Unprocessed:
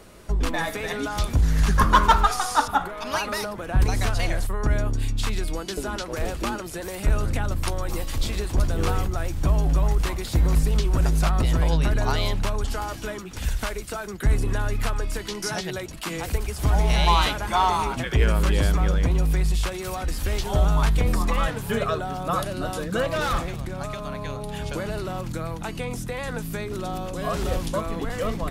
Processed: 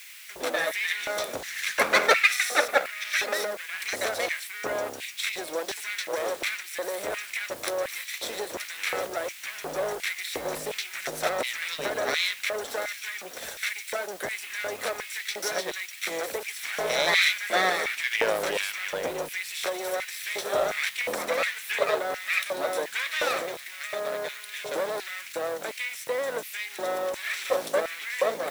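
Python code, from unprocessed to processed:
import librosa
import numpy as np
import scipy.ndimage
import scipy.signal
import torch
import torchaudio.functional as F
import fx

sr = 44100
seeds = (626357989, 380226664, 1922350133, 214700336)

y = fx.lower_of_two(x, sr, delay_ms=0.52)
y = fx.quant_dither(y, sr, seeds[0], bits=8, dither='triangular')
y = fx.filter_lfo_highpass(y, sr, shape='square', hz=1.4, low_hz=550.0, high_hz=2200.0, q=2.9)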